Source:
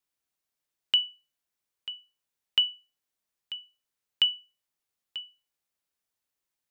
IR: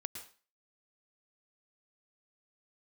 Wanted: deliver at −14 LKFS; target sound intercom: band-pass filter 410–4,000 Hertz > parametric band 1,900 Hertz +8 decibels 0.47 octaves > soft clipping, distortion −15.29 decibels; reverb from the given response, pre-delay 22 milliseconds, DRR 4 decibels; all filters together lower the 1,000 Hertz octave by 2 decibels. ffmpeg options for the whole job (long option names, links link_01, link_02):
-filter_complex "[0:a]equalizer=frequency=1000:width_type=o:gain=-3.5,asplit=2[link_01][link_02];[1:a]atrim=start_sample=2205,adelay=22[link_03];[link_02][link_03]afir=irnorm=-1:irlink=0,volume=-2dB[link_04];[link_01][link_04]amix=inputs=2:normalize=0,highpass=410,lowpass=4000,equalizer=frequency=1900:width_type=o:width=0.47:gain=8,asoftclip=threshold=-17.5dB,volume=15dB"